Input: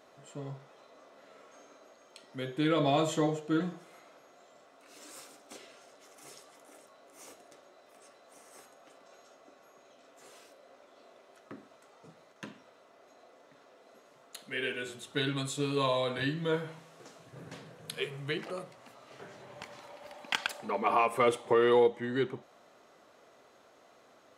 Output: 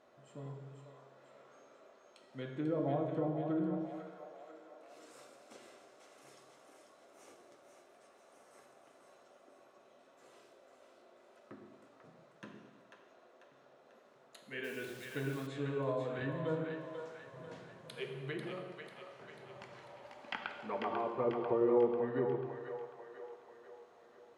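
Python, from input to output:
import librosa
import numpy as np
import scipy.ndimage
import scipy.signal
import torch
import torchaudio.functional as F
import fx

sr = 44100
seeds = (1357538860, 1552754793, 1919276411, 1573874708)

p1 = fx.env_lowpass_down(x, sr, base_hz=740.0, full_db=-25.5)
p2 = fx.high_shelf(p1, sr, hz=3300.0, db=-8.5)
p3 = p2 + fx.echo_split(p2, sr, split_hz=490.0, low_ms=104, high_ms=493, feedback_pct=52, wet_db=-6, dry=0)
p4 = fx.rev_gated(p3, sr, seeds[0], gate_ms=470, shape='falling', drr_db=5.5)
p5 = fx.quant_dither(p4, sr, seeds[1], bits=8, dither='none', at=(14.63, 15.46), fade=0.02)
y = p5 * 10.0 ** (-6.0 / 20.0)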